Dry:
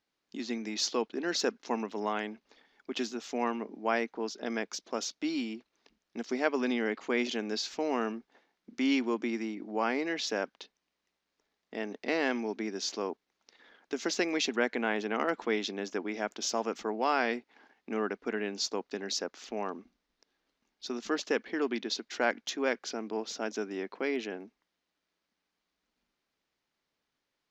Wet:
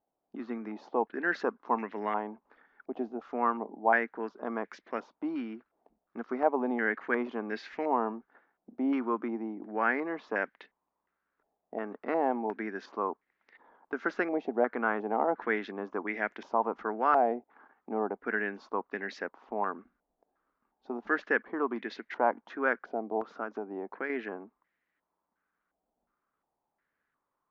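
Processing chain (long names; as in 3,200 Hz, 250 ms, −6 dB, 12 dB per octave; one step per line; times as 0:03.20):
0:23.22–0:24.10: downward compressor, threshold −32 dBFS, peak gain reduction 5.5 dB
low-pass on a step sequencer 2.8 Hz 730–1,900 Hz
level −2 dB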